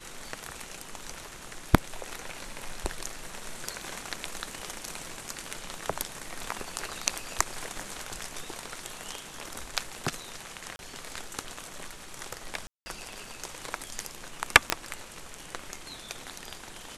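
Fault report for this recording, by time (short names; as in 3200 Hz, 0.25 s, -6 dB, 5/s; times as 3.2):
10.76–10.79 gap 31 ms
12.67–12.86 gap 0.19 s
14.7 pop -4 dBFS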